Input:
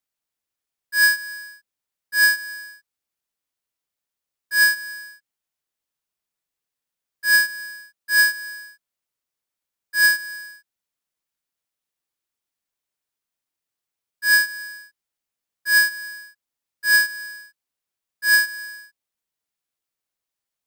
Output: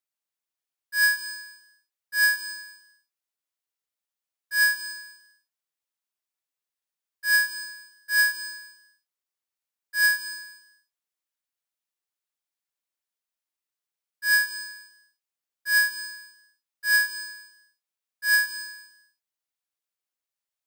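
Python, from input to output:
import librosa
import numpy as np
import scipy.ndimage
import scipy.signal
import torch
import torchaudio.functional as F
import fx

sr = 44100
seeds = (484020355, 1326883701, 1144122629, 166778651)

y = fx.low_shelf(x, sr, hz=280.0, db=-10.5)
y = fx.rev_gated(y, sr, seeds[0], gate_ms=310, shape='flat', drr_db=11.0)
y = y * 10.0 ** (-5.0 / 20.0)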